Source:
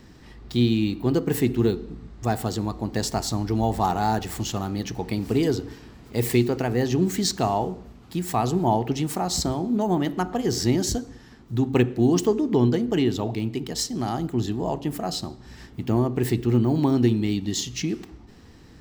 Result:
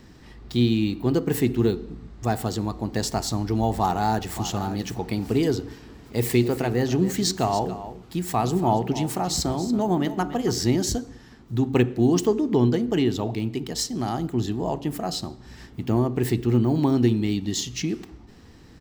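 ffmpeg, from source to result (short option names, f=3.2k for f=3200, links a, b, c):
-filter_complex "[0:a]asplit=2[a][b];[b]afade=t=in:st=3.79:d=0.01,afade=t=out:st=4.41:d=0.01,aecho=0:1:570|1140:0.251189|0.0376783[c];[a][c]amix=inputs=2:normalize=0,asettb=1/sr,asplit=3[d][e][f];[d]atrim=end=5.614[g];[e]atrim=start=5.61:end=10.53,asetpts=PTS-STARTPTS,afade=t=in:d=0.004:c=qsin,afade=t=out:st=4.916:d=0.004:c=qsin,aecho=1:1:281:0.224,atrim=end_sample=216972[h];[f]atrim=start=10.526[i];[g][h]acrossfade=d=0.004:c1=hsin:c2=qsin[j];[j][i]acrossfade=d=0.004:c1=qsin:c2=hsin"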